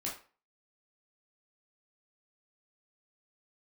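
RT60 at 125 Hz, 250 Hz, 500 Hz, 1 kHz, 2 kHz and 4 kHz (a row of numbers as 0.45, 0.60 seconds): 0.30, 0.35, 0.40, 0.40, 0.35, 0.30 seconds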